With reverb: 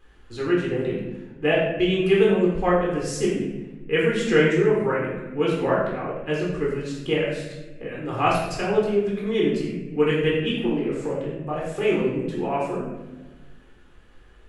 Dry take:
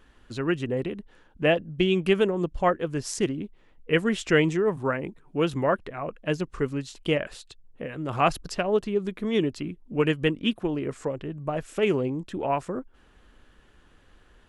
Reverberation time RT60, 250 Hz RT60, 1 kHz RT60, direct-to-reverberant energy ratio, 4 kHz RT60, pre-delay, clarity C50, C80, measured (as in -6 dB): 1.2 s, 1.9 s, 1.0 s, -5.0 dB, 0.75 s, 13 ms, 1.0 dB, 3.5 dB